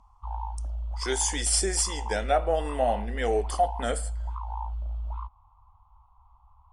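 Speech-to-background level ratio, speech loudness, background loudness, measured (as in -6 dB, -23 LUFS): 9.0 dB, -27.0 LUFS, -36.0 LUFS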